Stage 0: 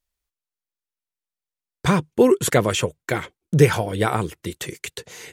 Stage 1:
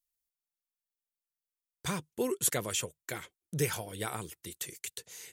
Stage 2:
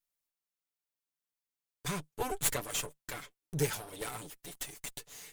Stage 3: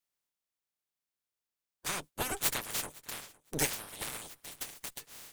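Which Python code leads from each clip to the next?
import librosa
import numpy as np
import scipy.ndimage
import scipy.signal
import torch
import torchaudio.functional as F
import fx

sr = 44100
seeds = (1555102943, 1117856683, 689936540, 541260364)

y1 = scipy.signal.lfilter([1.0, -0.8], [1.0], x)
y1 = F.gain(torch.from_numpy(y1), -3.5).numpy()
y2 = fx.lower_of_two(y1, sr, delay_ms=6.9)
y3 = fx.spec_clip(y2, sr, under_db=20)
y3 = fx.echo_feedback(y3, sr, ms=510, feedback_pct=16, wet_db=-23.0)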